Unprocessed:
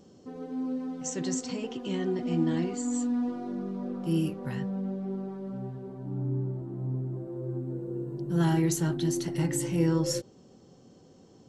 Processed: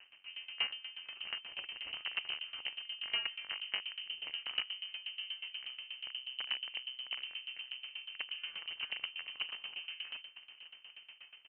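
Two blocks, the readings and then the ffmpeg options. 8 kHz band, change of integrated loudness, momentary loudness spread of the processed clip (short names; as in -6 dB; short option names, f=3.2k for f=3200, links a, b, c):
under -40 dB, -9.0 dB, 10 LU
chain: -filter_complex "[0:a]bandreject=f=160.4:t=h:w=4,bandreject=f=320.8:t=h:w=4,bandreject=f=481.2:t=h:w=4,bandreject=f=641.6:t=h:w=4,bandreject=f=802:t=h:w=4,bandreject=f=962.4:t=h:w=4,bandreject=f=1.1228k:t=h:w=4,bandreject=f=1.2832k:t=h:w=4,bandreject=f=1.4436k:t=h:w=4,bandreject=f=1.604k:t=h:w=4,alimiter=level_in=1dB:limit=-24dB:level=0:latency=1:release=82,volume=-1dB,acompressor=threshold=-38dB:ratio=2.5,flanger=delay=9.8:depth=7.9:regen=47:speed=0.51:shape=sinusoidal,acrusher=bits=7:dc=4:mix=0:aa=0.000001,asplit=2[a][b];[b]adelay=1166,volume=-13dB,highshelf=f=4k:g=-26.2[c];[a][c]amix=inputs=2:normalize=0,lowpass=f=2.6k:t=q:w=0.5098,lowpass=f=2.6k:t=q:w=0.6013,lowpass=f=2.6k:t=q:w=0.9,lowpass=f=2.6k:t=q:w=2.563,afreqshift=-3100,aeval=exprs='val(0)*pow(10,-19*if(lt(mod(8.3*n/s,1),2*abs(8.3)/1000),1-mod(8.3*n/s,1)/(2*abs(8.3)/1000),(mod(8.3*n/s,1)-2*abs(8.3)/1000)/(1-2*abs(8.3)/1000))/20)':c=same,volume=7.5dB"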